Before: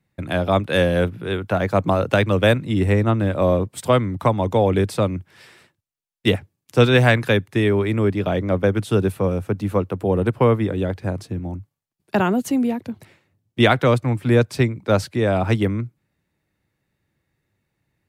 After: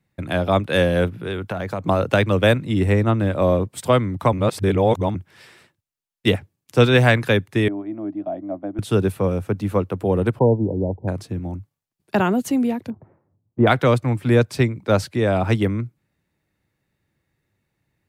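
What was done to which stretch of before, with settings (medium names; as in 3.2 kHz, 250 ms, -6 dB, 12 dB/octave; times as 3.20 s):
1.20–1.89 s: compression 12:1, threshold -21 dBFS
4.33–5.15 s: reverse
7.68–8.79 s: two resonant band-passes 450 Hz, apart 1.1 oct
10.39–11.08 s: brick-wall FIR low-pass 1 kHz
12.90–13.67 s: low-pass 1.1 kHz 24 dB/octave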